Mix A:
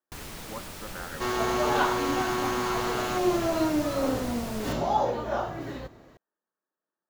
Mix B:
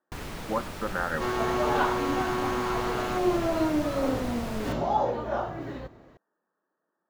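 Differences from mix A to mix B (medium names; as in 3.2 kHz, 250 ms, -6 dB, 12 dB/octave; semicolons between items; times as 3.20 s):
speech +11.5 dB; first sound +4.5 dB; master: add treble shelf 4 kHz -10.5 dB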